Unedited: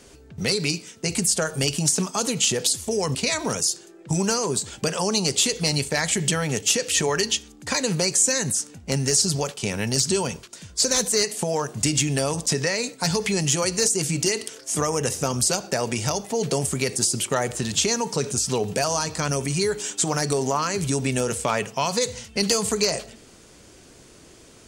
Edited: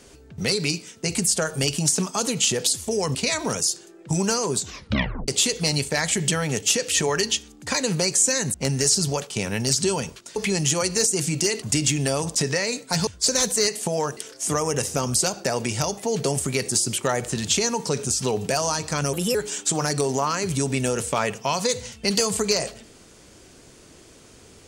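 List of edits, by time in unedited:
0:04.58: tape stop 0.70 s
0:08.54–0:08.81: remove
0:10.63–0:11.73: swap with 0:13.18–0:14.44
0:19.40–0:19.67: play speed 124%

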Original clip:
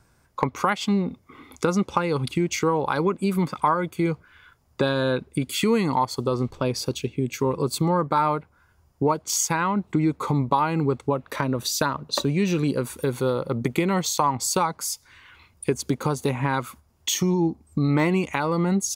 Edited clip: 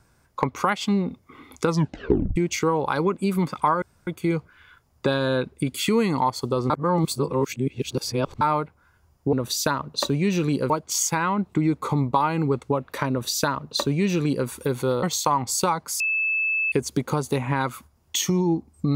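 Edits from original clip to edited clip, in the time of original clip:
0:01.67: tape stop 0.69 s
0:03.82: splice in room tone 0.25 s
0:06.45–0:08.16: reverse
0:11.48–0:12.85: duplicate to 0:09.08
0:13.41–0:13.96: remove
0:14.93–0:15.65: beep over 2,620 Hz −20.5 dBFS

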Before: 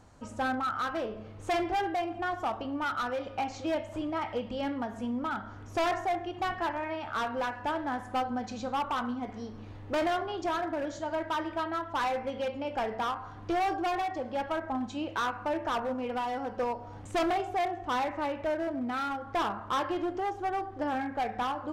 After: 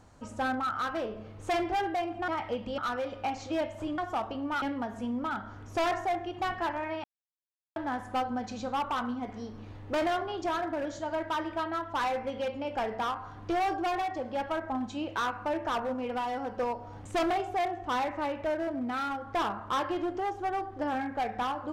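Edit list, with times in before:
0:02.28–0:02.92: swap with 0:04.12–0:04.62
0:07.04–0:07.76: silence

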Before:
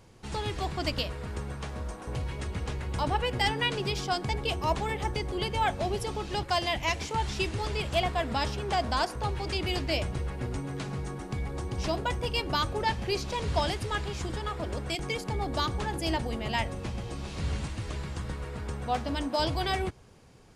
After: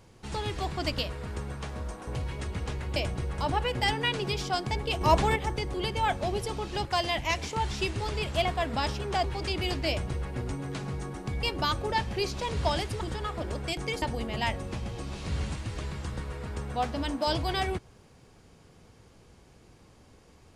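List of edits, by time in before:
0:04.59–0:04.94: clip gain +6 dB
0:08.82–0:09.29: remove
0:09.93–0:10.35: duplicate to 0:02.96
0:11.48–0:12.34: remove
0:13.92–0:14.23: remove
0:15.24–0:16.14: remove

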